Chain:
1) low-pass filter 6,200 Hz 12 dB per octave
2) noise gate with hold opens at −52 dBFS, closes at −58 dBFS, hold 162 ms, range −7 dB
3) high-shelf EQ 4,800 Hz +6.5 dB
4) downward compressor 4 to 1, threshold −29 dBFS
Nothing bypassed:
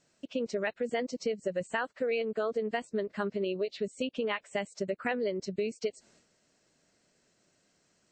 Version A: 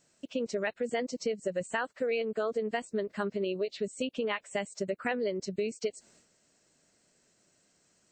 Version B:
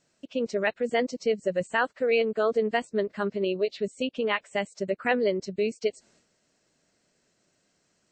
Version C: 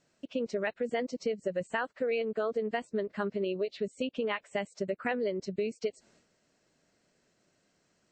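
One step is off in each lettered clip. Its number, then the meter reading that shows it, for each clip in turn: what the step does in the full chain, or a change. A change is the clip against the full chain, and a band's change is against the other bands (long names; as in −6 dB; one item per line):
1, 8 kHz band +4.5 dB
4, change in momentary loudness spread +3 LU
3, 4 kHz band −2.0 dB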